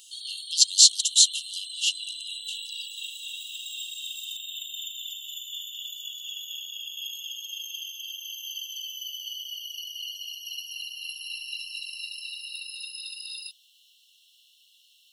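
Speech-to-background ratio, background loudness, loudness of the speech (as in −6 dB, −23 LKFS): 16.0 dB, −35.0 LKFS, −19.0 LKFS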